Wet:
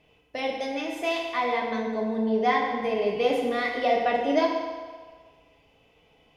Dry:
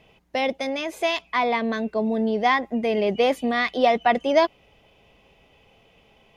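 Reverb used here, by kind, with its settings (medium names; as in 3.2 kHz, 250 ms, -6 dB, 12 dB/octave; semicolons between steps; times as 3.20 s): FDN reverb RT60 1.6 s, low-frequency decay 0.7×, high-frequency decay 0.8×, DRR -2 dB; trim -8 dB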